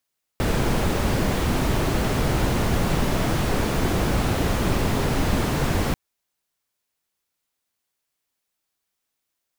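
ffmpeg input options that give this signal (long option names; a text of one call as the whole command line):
ffmpeg -f lavfi -i "anoisesrc=color=brown:amplitude=0.417:duration=5.54:sample_rate=44100:seed=1" out.wav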